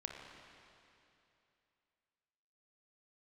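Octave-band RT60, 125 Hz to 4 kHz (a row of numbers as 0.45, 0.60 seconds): 2.8, 2.8, 2.8, 2.8, 2.8, 2.7 seconds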